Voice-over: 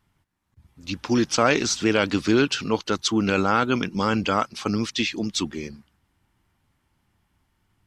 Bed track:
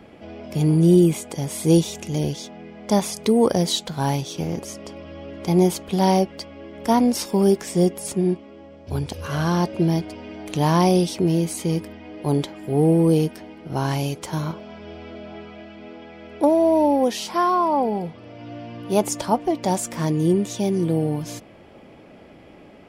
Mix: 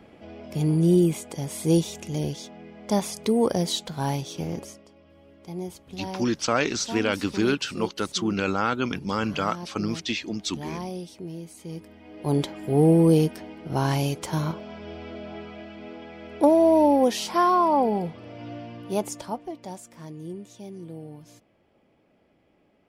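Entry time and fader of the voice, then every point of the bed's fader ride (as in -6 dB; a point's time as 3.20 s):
5.10 s, -4.0 dB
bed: 4.62 s -4.5 dB
4.87 s -17 dB
11.56 s -17 dB
12.44 s -0.5 dB
18.46 s -0.5 dB
19.85 s -18 dB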